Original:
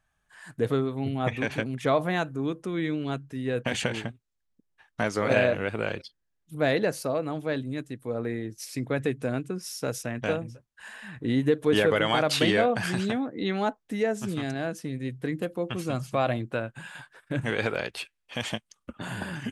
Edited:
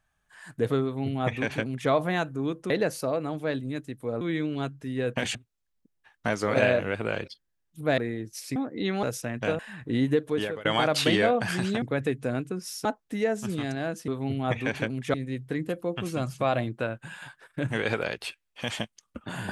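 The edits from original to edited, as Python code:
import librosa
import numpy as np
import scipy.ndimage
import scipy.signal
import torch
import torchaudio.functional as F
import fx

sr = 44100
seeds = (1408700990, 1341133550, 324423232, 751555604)

y = fx.edit(x, sr, fx.duplicate(start_s=0.84, length_s=1.06, to_s=14.87),
    fx.cut(start_s=3.84, length_s=0.25),
    fx.move(start_s=6.72, length_s=1.51, to_s=2.7),
    fx.swap(start_s=8.81, length_s=1.03, other_s=13.17, other_length_s=0.47),
    fx.cut(start_s=10.4, length_s=0.54),
    fx.fade_out_to(start_s=11.44, length_s=0.56, floor_db=-23.0), tone=tone)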